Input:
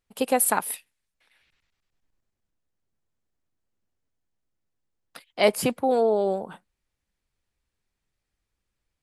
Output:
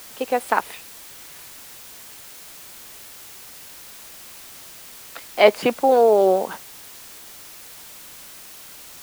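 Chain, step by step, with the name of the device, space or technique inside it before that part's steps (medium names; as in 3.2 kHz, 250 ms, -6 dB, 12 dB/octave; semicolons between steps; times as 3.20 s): dictaphone (band-pass 320–3300 Hz; level rider gain up to 12 dB; wow and flutter; white noise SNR 17 dB)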